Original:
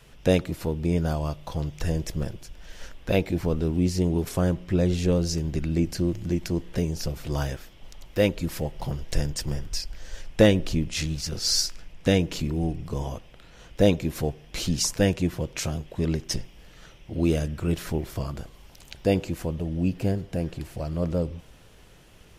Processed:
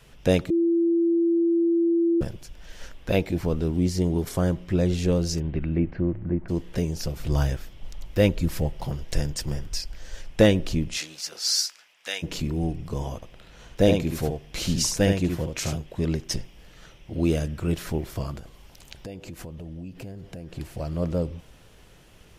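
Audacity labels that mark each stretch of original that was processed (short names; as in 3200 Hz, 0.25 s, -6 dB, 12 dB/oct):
0.500000	2.210000	bleep 337 Hz -18 dBFS
3.700000	4.570000	notch 2600 Hz
5.390000	6.480000	LPF 3300 Hz -> 1500 Hz 24 dB/oct
7.190000	8.730000	low shelf 150 Hz +8.5 dB
10.960000	12.220000	HPF 500 Hz -> 1400 Hz
13.150000	15.750000	echo 72 ms -5.5 dB
18.370000	20.570000	compressor, threshold -35 dBFS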